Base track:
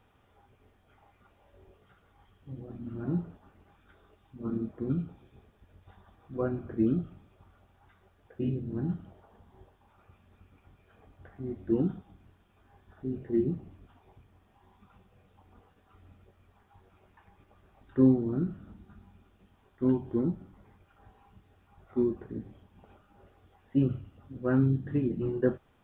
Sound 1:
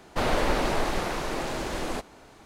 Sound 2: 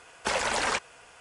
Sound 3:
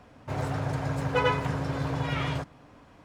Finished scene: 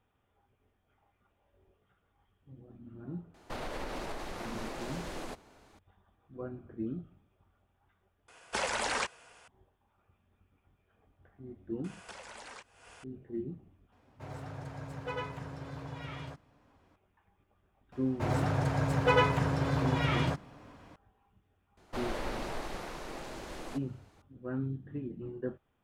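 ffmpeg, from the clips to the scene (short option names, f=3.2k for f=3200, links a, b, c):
-filter_complex "[1:a]asplit=2[a][b];[2:a]asplit=2[c][d];[3:a]asplit=2[e][f];[0:a]volume=-10.5dB[g];[a]alimiter=limit=-21dB:level=0:latency=1:release=98[h];[d]acompressor=threshold=-41dB:ratio=16:attack=2.4:release=401:knee=1:detection=peak[i];[g]asplit=2[j][k];[j]atrim=end=8.284[l];[c]atrim=end=1.2,asetpts=PTS-STARTPTS,volume=-5dB[m];[k]atrim=start=9.476[n];[h]atrim=end=2.45,asetpts=PTS-STARTPTS,volume=-9dB,afade=t=in:d=0.004:c=hsin,afade=t=out:st=2.446:d=0.004:c=hsin,adelay=3340[o];[i]atrim=end=1.2,asetpts=PTS-STARTPTS,volume=-1.5dB,afade=t=in:d=0.004:c=hsin,afade=t=out:st=1.196:d=0.004:c=hsin,adelay=11840[p];[e]atrim=end=3.04,asetpts=PTS-STARTPTS,volume=-13dB,afade=t=in:d=0.004:c=hsin,afade=t=out:st=3.036:d=0.004:c=hsin,adelay=13920[q];[f]atrim=end=3.04,asetpts=PTS-STARTPTS,afade=t=in:d=0.004:c=hsin,afade=t=out:st=3.036:d=0.004:c=hsin,adelay=17920[r];[b]atrim=end=2.45,asetpts=PTS-STARTPTS,volume=-12dB,afade=t=in:d=0.004:c=hsin,afade=t=out:st=2.446:d=0.004:c=hsin,adelay=21770[s];[l][m]acrossfade=d=0.004:c1=hsin:c2=hsin[t];[t][n]acrossfade=d=0.004:c1=hsin:c2=hsin[u];[u][o][p][q][r][s]amix=inputs=6:normalize=0"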